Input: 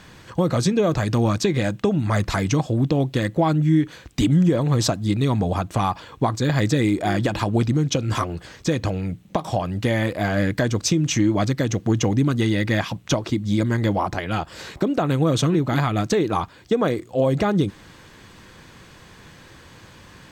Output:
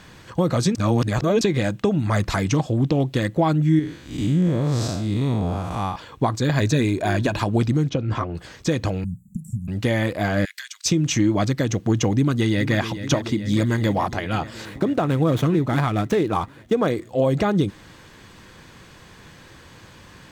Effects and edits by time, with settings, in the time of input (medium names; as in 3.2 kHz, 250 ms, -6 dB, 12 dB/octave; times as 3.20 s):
0.75–1.41 s: reverse
2.46–3.08 s: loudspeaker Doppler distortion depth 0.13 ms
3.79–5.96 s: spectral blur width 178 ms
6.57–7.37 s: rippled EQ curve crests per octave 1.5, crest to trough 7 dB
7.89–8.35 s: tape spacing loss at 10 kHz 24 dB
9.04–9.68 s: Chebyshev band-stop 230–7300 Hz, order 5
10.45–10.86 s: Bessel high-pass 2.6 kHz, order 6
12.14–12.78 s: echo throw 430 ms, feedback 75%, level -11 dB
13.49–14.10 s: treble shelf 4.4 kHz +4.5 dB
14.65–16.87 s: median filter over 9 samples